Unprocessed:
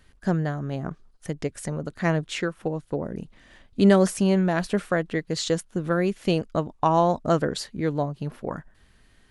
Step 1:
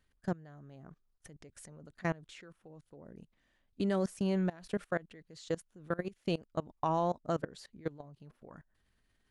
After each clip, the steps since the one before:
output level in coarse steps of 22 dB
level −8 dB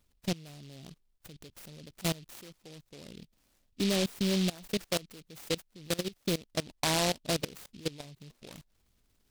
in parallel at −6 dB: hard clipping −30.5 dBFS, distortion −9 dB
on the sum: short delay modulated by noise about 3,500 Hz, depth 0.2 ms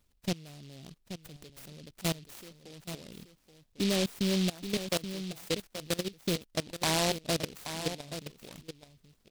single-tap delay 828 ms −10 dB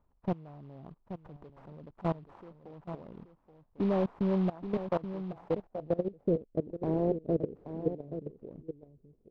low-pass filter sweep 970 Hz → 430 Hz, 0:05.31–0:06.58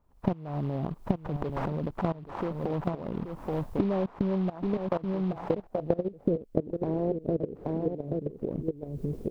camcorder AGC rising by 74 dB per second

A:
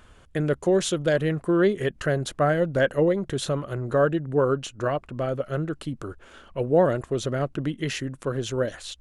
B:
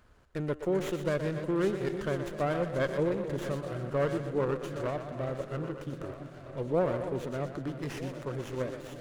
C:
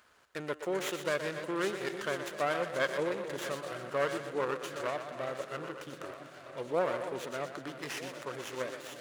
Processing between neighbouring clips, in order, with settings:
feedback delay that plays each chunk backwards 630 ms, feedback 62%, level −12 dB; echo with a time of its own for lows and highs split 330 Hz, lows 331 ms, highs 122 ms, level −9 dB; windowed peak hold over 9 samples; level −8.5 dB
high-pass filter 1,300 Hz 6 dB per octave; level +6 dB

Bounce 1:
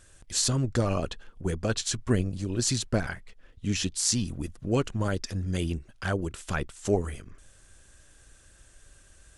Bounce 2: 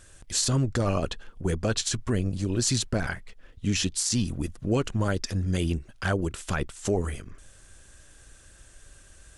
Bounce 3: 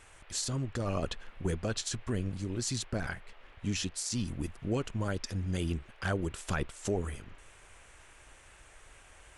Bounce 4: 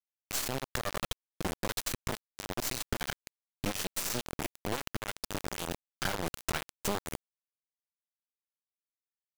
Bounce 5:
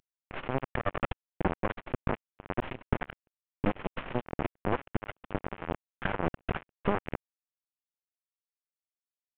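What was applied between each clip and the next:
brickwall limiter −19 dBFS, peak gain reduction 11 dB; level +3.5 dB
speech leveller 0.5 s; noise in a band 350–2,800 Hz −53 dBFS; level −7 dB
downward compressor 4 to 1, threshold −37 dBFS, peak gain reduction 9.5 dB; harmonic generator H 6 −13 dB, 7 −22 dB, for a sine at −24 dBFS; bit reduction 6 bits; level +6.5 dB
variable-slope delta modulation 16 kbit/s; level +8 dB

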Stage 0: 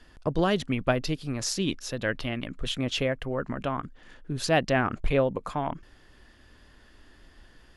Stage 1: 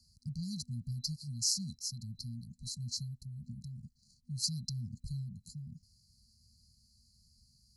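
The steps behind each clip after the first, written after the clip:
high-pass filter 100 Hz 12 dB per octave
brick-wall band-stop 240–4,000 Hz
parametric band 220 Hz −11.5 dB 1.2 octaves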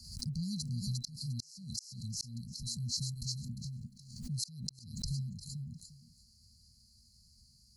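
feedback echo with a high-pass in the loop 352 ms, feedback 18%, high-pass 590 Hz, level −3 dB
gate with flip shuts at −25 dBFS, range −37 dB
background raised ahead of every attack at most 72 dB per second
level +2 dB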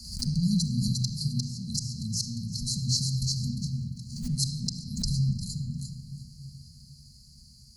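convolution reverb RT60 2.0 s, pre-delay 5 ms, DRR 3 dB
level +8 dB

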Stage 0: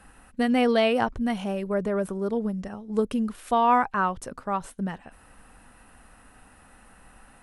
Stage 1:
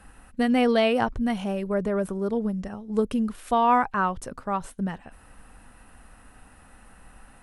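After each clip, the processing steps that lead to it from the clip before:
low-shelf EQ 120 Hz +5 dB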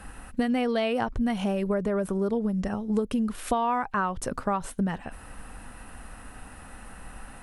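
downward compressor 8 to 1, threshold −30 dBFS, peak gain reduction 14.5 dB
level +7 dB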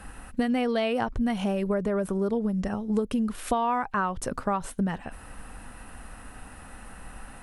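no processing that can be heard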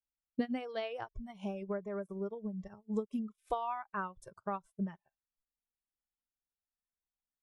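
noise reduction from a noise print of the clip's start 20 dB
expander for the loud parts 2.5 to 1, over −46 dBFS
level −5 dB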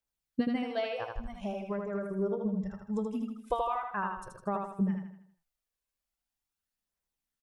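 phase shifter 0.43 Hz, delay 2 ms, feedback 39%
on a send: repeating echo 79 ms, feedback 44%, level −4 dB
on the sum: level +3 dB

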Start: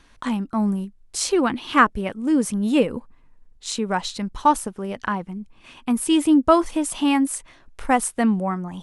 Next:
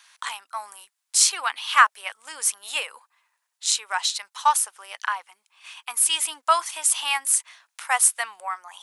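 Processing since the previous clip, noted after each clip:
high-pass filter 840 Hz 24 dB per octave
spectral tilt +3 dB per octave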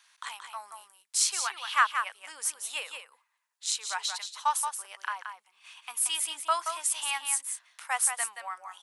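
single-tap delay 177 ms −7 dB
level −8 dB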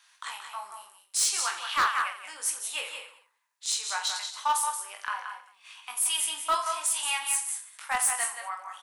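reverse bouncing-ball delay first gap 20 ms, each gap 1.4×, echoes 5
hard clipping −19.5 dBFS, distortion −14 dB

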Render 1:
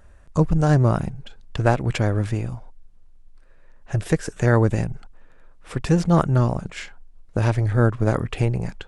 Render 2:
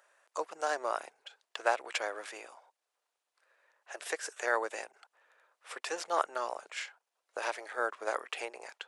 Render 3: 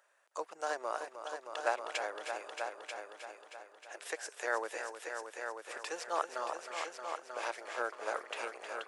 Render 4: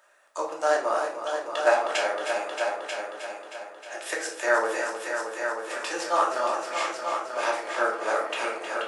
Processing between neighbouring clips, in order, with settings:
Bessel high-pass filter 780 Hz, order 6; level −4 dB
echo machine with several playback heads 313 ms, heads all three, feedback 43%, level −9.5 dB; level −4 dB
convolution reverb RT60 0.55 s, pre-delay 3 ms, DRR −3 dB; level +6.5 dB

